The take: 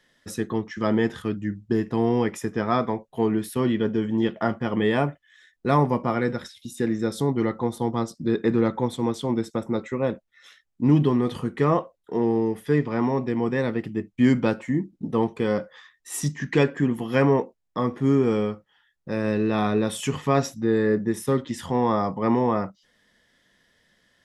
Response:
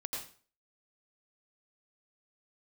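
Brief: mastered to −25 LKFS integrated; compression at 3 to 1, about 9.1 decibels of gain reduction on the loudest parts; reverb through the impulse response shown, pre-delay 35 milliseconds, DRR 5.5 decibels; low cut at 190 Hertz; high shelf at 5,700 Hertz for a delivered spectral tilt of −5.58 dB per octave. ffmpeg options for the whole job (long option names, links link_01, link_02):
-filter_complex "[0:a]highpass=190,highshelf=frequency=5700:gain=-7,acompressor=threshold=-28dB:ratio=3,asplit=2[link_01][link_02];[1:a]atrim=start_sample=2205,adelay=35[link_03];[link_02][link_03]afir=irnorm=-1:irlink=0,volume=-6.5dB[link_04];[link_01][link_04]amix=inputs=2:normalize=0,volume=6dB"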